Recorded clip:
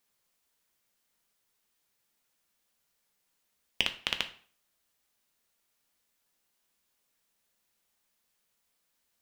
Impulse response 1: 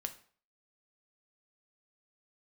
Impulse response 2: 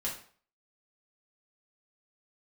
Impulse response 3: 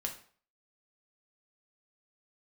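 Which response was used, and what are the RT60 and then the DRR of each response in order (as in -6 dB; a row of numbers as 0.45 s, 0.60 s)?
1; 0.45 s, 0.45 s, 0.45 s; 6.5 dB, -5.5 dB, 1.0 dB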